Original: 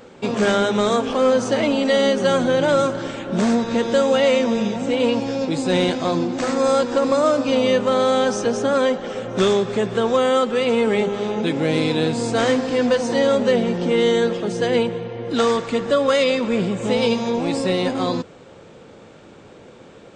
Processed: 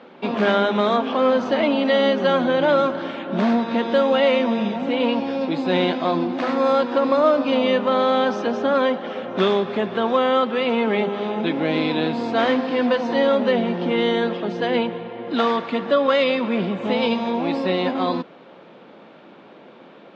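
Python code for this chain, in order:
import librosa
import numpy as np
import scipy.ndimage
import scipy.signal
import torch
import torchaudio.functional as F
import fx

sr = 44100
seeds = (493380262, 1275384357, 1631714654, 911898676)

y = fx.cabinet(x, sr, low_hz=180.0, low_slope=24, high_hz=3900.0, hz=(460.0, 670.0, 1000.0), db=(-5, 3, 3))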